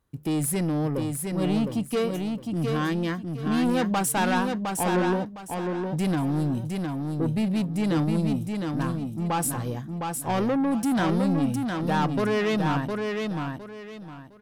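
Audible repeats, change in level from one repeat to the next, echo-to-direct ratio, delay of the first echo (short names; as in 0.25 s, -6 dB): 3, -11.5 dB, -4.0 dB, 0.71 s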